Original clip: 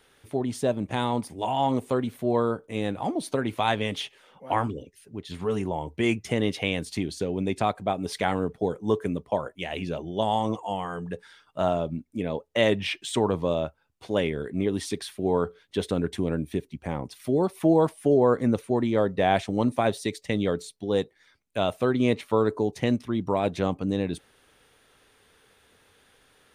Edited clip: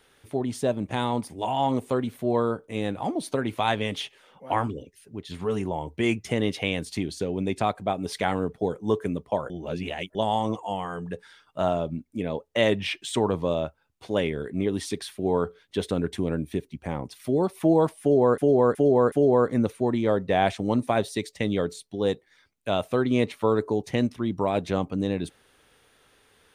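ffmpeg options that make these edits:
ffmpeg -i in.wav -filter_complex "[0:a]asplit=6[link_01][link_02][link_03][link_04][link_05][link_06];[link_01]atrim=end=9.502[link_07];[link_02]atrim=start=9.498:end=10.152,asetpts=PTS-STARTPTS,areverse[link_08];[link_03]atrim=start=10.148:end=18.382[link_09];[link_04]atrim=start=18.008:end=18.382[link_10];[link_05]atrim=start=18.008:end=18.382[link_11];[link_06]atrim=start=18.008[link_12];[link_07][link_08]acrossfade=duration=0.004:curve1=hsin:curve2=hsin[link_13];[link_13][link_09]acrossfade=duration=0.004:curve1=hsin:curve2=hsin[link_14];[link_14][link_10]acrossfade=duration=0.004:curve1=hsin:curve2=hsin[link_15];[link_15][link_11]acrossfade=duration=0.004:curve1=hsin:curve2=hsin[link_16];[link_16][link_12]acrossfade=duration=0.004:curve1=hsin:curve2=hsin" out.wav

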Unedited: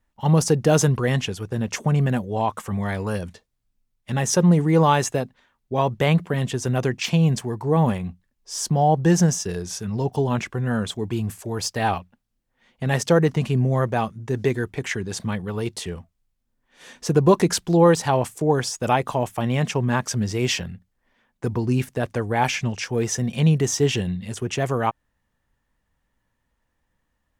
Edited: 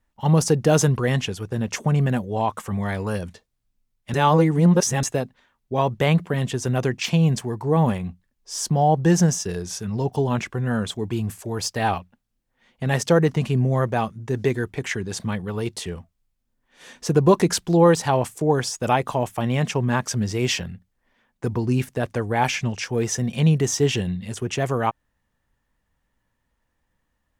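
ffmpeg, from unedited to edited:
ffmpeg -i in.wav -filter_complex "[0:a]asplit=3[link_01][link_02][link_03];[link_01]atrim=end=4.142[link_04];[link_02]atrim=start=4.138:end=5.032,asetpts=PTS-STARTPTS,areverse[link_05];[link_03]atrim=start=5.028[link_06];[link_04][link_05]acrossfade=duration=0.004:curve1=hsin:curve2=hsin[link_07];[link_07][link_06]acrossfade=duration=0.004:curve1=hsin:curve2=hsin" out.wav

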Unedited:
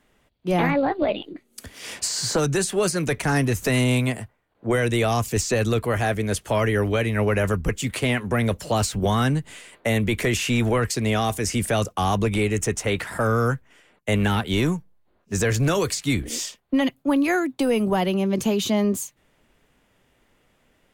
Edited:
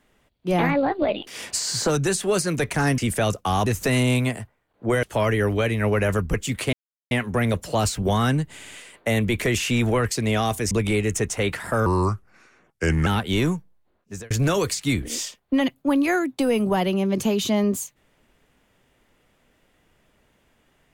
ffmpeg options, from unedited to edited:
ffmpeg -i in.wav -filter_complex "[0:a]asplit=13[link_01][link_02][link_03][link_04][link_05][link_06][link_07][link_08][link_09][link_10][link_11][link_12][link_13];[link_01]atrim=end=1.272[link_14];[link_02]atrim=start=1.758:end=3.472[link_15];[link_03]atrim=start=11.498:end=12.182[link_16];[link_04]atrim=start=3.468:end=4.842[link_17];[link_05]atrim=start=6.378:end=8.08,asetpts=PTS-STARTPTS,afade=type=out:start_time=1.698:duration=0.004:curve=hsin,apad=pad_dur=0.38[link_18];[link_06]atrim=start=8.08:end=9.562,asetpts=PTS-STARTPTS,afade=type=in:duration=0.004:curve=hsin[link_19];[link_07]atrim=start=9.498:end=9.562[link_20];[link_08]atrim=start=9.498:end=9.562[link_21];[link_09]atrim=start=9.498:end=11.502[link_22];[link_10]atrim=start=12.178:end=13.334[link_23];[link_11]atrim=start=13.33:end=14.27,asetpts=PTS-STARTPTS,asetrate=34398,aresample=44100,atrim=end_sample=53146,asetpts=PTS-STARTPTS[link_24];[link_12]atrim=start=14.266:end=15.51,asetpts=PTS-STARTPTS,afade=type=out:start_time=0.504:duration=0.74:curve=qsin[link_25];[link_13]atrim=start=15.51,asetpts=PTS-STARTPTS,afade=type=in:duration=0.004:curve=hsin[link_26];[link_14][link_15]acrossfade=duration=0.004:curve1=hsin:curve2=hsin[link_27];[link_27][link_16]acrossfade=duration=0.004:curve1=hsin:curve2=hsin[link_28];[link_28][link_17]acrossfade=duration=0.004:curve1=hsin:curve2=hsin[link_29];[link_18][link_19]concat=n=2:v=0:a=1[link_30];[link_29][link_30]acrossfade=duration=0.004:curve1=hsin:curve2=hsin[link_31];[link_31][link_20]acrossfade=duration=0.004:curve1=hsin:curve2=hsin[link_32];[link_32][link_21]acrossfade=duration=0.004:curve1=hsin:curve2=hsin[link_33];[link_33][link_22]acrossfade=duration=0.004:curve1=hsin:curve2=hsin[link_34];[link_34][link_23]acrossfade=duration=0.004:curve1=hsin:curve2=hsin[link_35];[link_35][link_24]acrossfade=duration=0.004:curve1=hsin:curve2=hsin[link_36];[link_25][link_26]concat=n=2:v=0:a=1[link_37];[link_36][link_37]acrossfade=duration=0.004:curve1=hsin:curve2=hsin" out.wav

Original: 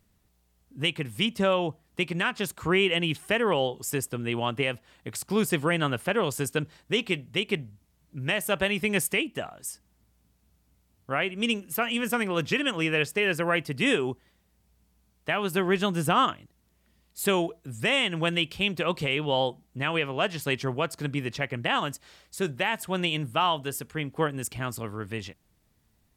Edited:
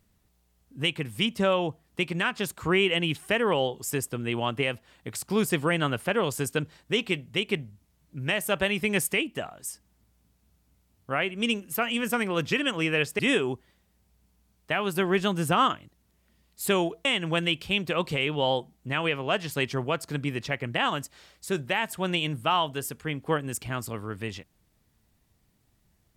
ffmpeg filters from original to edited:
ffmpeg -i in.wav -filter_complex "[0:a]asplit=3[link_01][link_02][link_03];[link_01]atrim=end=13.192[link_04];[link_02]atrim=start=13.768:end=17.632[link_05];[link_03]atrim=start=17.948[link_06];[link_04][link_05]acrossfade=duration=0.004:curve1=hsin:curve2=hsin[link_07];[link_07][link_06]acrossfade=duration=0.004:curve1=hsin:curve2=hsin" out.wav

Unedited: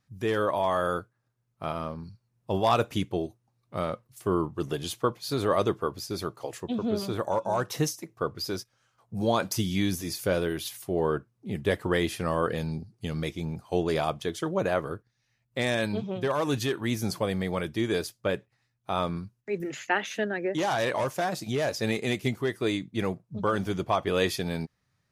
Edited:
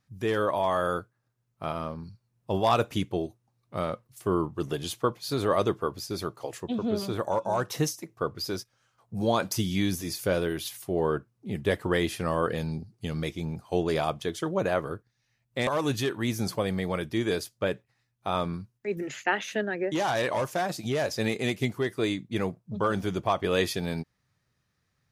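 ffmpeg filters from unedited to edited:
ffmpeg -i in.wav -filter_complex "[0:a]asplit=2[link_01][link_02];[link_01]atrim=end=15.672[link_03];[link_02]atrim=start=16.298[link_04];[link_03][link_04]acrossfade=duration=0.004:curve1=hsin:curve2=hsin" out.wav

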